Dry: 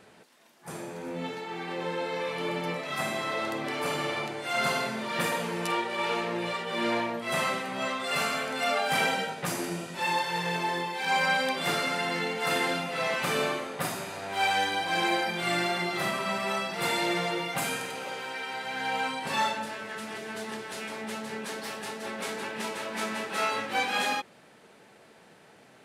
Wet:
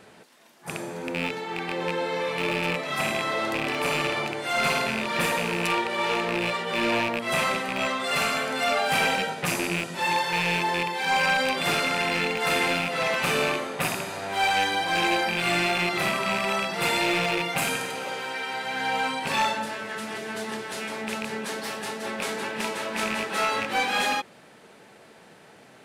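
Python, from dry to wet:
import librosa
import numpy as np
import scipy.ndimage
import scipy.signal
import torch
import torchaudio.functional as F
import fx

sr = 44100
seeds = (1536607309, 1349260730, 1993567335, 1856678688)

p1 = fx.rattle_buzz(x, sr, strikes_db=-39.0, level_db=-19.0)
p2 = np.clip(10.0 ** (27.0 / 20.0) * p1, -1.0, 1.0) / 10.0 ** (27.0 / 20.0)
y = p1 + (p2 * 10.0 ** (-4.0 / 20.0))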